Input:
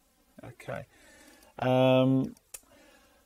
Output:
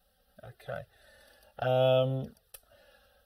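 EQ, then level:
phaser with its sweep stopped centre 1,500 Hz, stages 8
0.0 dB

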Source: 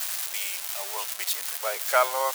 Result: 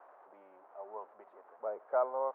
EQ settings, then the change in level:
low-pass filter 1,100 Hz 24 dB per octave
spectral tilt −4.5 dB per octave
−8.5 dB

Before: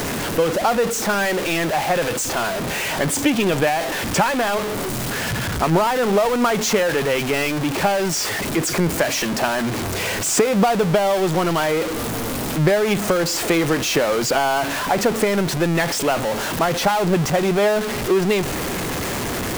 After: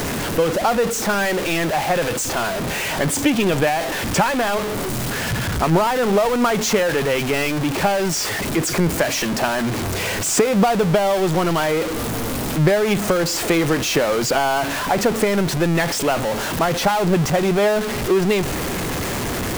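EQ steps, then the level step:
low-shelf EQ 130 Hz +4 dB
0.0 dB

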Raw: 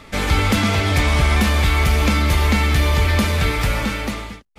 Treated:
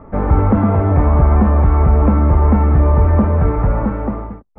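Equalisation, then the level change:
low-pass filter 1,100 Hz 24 dB per octave
+5.5 dB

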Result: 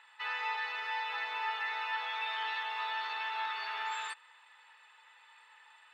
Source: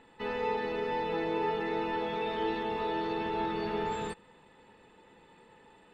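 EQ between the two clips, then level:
high-pass filter 1,100 Hz 24 dB per octave
high-shelf EQ 6,900 Hz −7 dB
+5.5 dB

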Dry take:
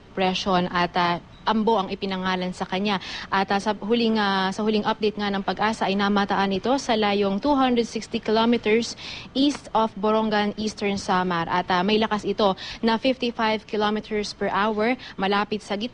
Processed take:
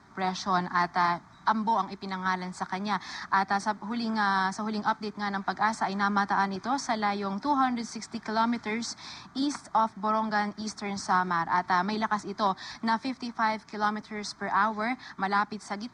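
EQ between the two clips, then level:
high-pass filter 330 Hz 6 dB per octave
phaser with its sweep stopped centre 1,200 Hz, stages 4
0.0 dB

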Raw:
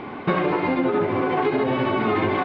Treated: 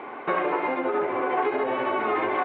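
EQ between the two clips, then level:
high-frequency loss of the air 97 metres
three-way crossover with the lows and the highs turned down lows −22 dB, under 360 Hz, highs −19 dB, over 3,100 Hz
0.0 dB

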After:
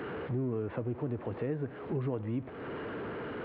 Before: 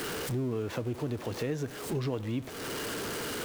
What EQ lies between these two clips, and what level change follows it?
Gaussian smoothing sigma 4.1 samples
high-pass filter 50 Hz
−1.0 dB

